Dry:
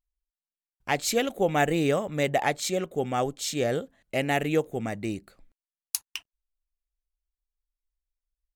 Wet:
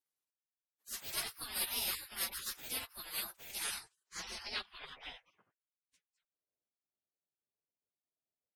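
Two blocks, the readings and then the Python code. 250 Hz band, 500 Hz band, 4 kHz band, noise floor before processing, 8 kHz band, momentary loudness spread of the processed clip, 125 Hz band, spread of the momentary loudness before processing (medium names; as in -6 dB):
-29.5 dB, -30.0 dB, -5.0 dB, under -85 dBFS, -6.5 dB, 13 LU, -30.0 dB, 9 LU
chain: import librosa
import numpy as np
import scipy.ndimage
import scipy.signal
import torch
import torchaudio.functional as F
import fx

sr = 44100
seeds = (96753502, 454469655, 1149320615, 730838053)

y = fx.partial_stretch(x, sr, pct=111)
y = fx.filter_sweep_lowpass(y, sr, from_hz=13000.0, to_hz=510.0, start_s=3.47, end_s=6.26, q=7.3)
y = fx.spec_gate(y, sr, threshold_db=-30, keep='weak')
y = F.gain(torch.from_numpy(y), 7.5).numpy()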